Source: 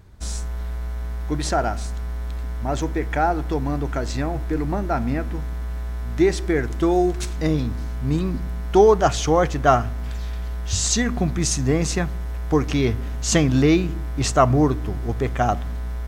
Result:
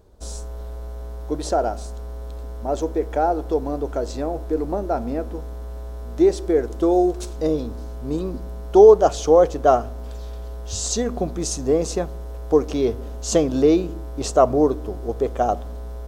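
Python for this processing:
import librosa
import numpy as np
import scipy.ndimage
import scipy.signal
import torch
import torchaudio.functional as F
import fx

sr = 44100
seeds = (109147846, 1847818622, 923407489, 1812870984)

y = fx.graphic_eq_10(x, sr, hz=(125, 500, 2000), db=(-11, 11, -11))
y = F.gain(torch.from_numpy(y), -3.0).numpy()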